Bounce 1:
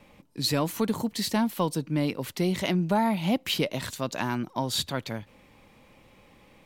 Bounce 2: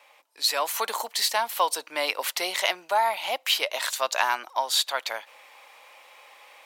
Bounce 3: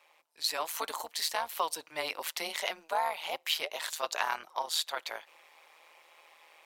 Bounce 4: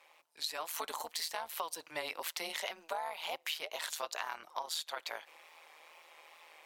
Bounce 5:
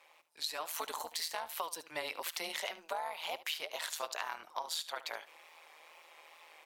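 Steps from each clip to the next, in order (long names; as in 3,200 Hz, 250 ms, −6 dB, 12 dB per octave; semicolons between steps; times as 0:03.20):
high-pass filter 660 Hz 24 dB per octave; speech leveller within 4 dB 0.5 s; level +7 dB
amplitude modulation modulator 160 Hz, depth 60%; level −4.5 dB
downward compressor, threshold −36 dBFS, peak gain reduction 11 dB; tape wow and flutter 55 cents; level +1 dB
single-tap delay 73 ms −16 dB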